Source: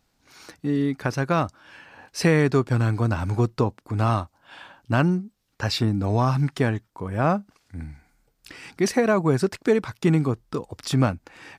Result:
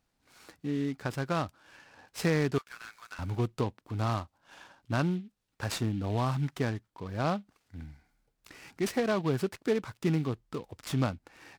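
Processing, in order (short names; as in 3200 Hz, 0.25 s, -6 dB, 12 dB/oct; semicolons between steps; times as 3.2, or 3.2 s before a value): 2.58–3.19 HPF 1400 Hz 24 dB/oct; noise-modulated delay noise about 2600 Hz, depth 0.032 ms; gain -8.5 dB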